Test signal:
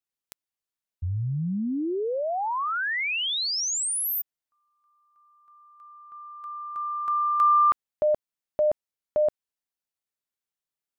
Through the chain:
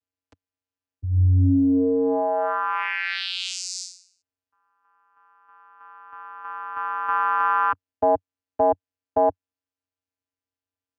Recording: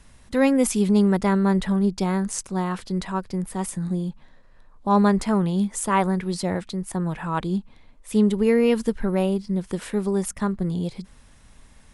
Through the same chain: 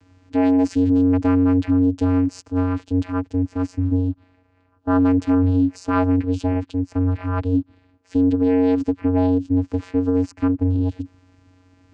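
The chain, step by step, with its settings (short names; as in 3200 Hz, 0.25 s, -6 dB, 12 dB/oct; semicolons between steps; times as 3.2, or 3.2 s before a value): vocoder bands 8, square 91.6 Hz; limiter -16.5 dBFS; gain +6 dB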